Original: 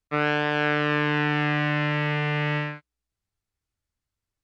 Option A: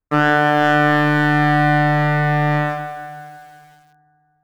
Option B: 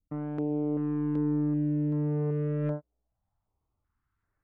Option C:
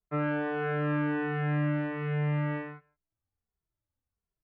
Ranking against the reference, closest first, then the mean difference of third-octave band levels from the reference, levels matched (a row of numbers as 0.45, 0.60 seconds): A, C, B; 4.5, 6.5, 12.5 decibels